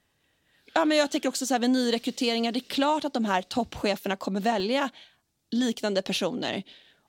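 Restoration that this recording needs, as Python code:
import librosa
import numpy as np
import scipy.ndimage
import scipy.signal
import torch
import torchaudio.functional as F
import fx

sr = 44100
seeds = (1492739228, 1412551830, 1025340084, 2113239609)

y = fx.fix_interpolate(x, sr, at_s=(4.6,), length_ms=2.3)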